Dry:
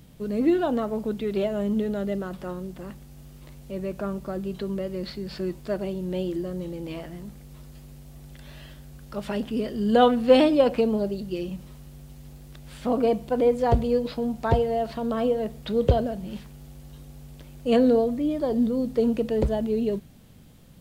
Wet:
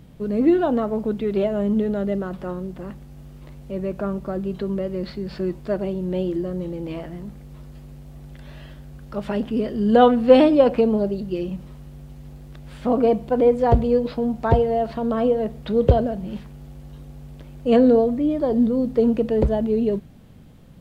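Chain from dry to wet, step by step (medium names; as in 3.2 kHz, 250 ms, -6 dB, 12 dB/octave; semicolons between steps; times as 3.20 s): treble shelf 3.2 kHz -11 dB; trim +4.5 dB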